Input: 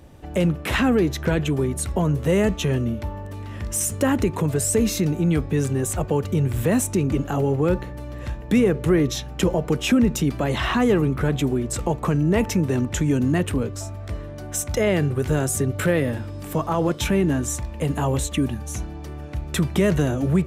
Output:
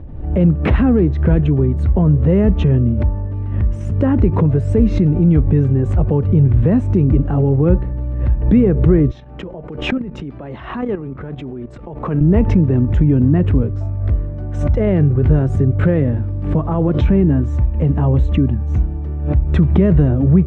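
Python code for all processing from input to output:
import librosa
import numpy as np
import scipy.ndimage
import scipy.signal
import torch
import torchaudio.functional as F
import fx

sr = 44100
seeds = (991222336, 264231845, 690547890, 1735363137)

y = fx.chain(x, sr, fx.highpass(hz=470.0, slope=6),
    fx.level_steps(step_db=11), at=(9.11, 12.21))
y = scipy.signal.sosfilt(scipy.signal.butter(2, 2900.0, 'lowpass', fs=sr, output='sos'), y)
y = fx.tilt_eq(y, sr, slope=-4.0)
y = fx.pre_swell(y, sr, db_per_s=68.0)
y = F.gain(torch.from_numpy(y), -2.0).numpy()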